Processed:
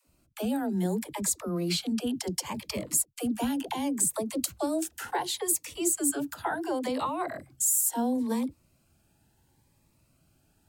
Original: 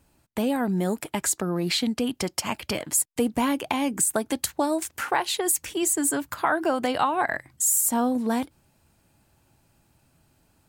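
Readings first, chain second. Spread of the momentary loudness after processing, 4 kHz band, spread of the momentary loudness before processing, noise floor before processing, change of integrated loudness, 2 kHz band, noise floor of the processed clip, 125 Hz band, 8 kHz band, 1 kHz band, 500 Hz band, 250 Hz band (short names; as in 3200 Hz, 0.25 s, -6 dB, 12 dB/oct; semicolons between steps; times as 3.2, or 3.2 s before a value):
7 LU, -5.0 dB, 6 LU, -66 dBFS, -4.0 dB, -10.0 dB, -68 dBFS, -3.0 dB, -3.0 dB, -7.5 dB, -5.5 dB, -3.5 dB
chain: dynamic EQ 1900 Hz, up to -5 dB, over -39 dBFS, Q 1.1; dispersion lows, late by 79 ms, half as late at 340 Hz; cascading phaser rising 0.7 Hz; gain -3 dB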